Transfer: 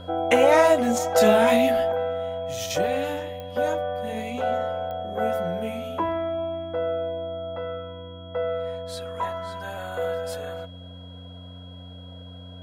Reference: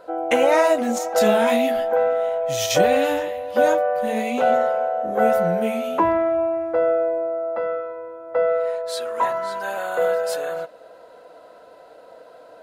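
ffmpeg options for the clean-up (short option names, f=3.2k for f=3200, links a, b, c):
-af "adeclick=t=4,bandreject=f=90.1:t=h:w=4,bandreject=f=180.2:t=h:w=4,bandreject=f=270.3:t=h:w=4,bandreject=f=3.3k:w=30,asetnsamples=n=441:p=0,asendcmd='1.92 volume volume 7.5dB',volume=0dB"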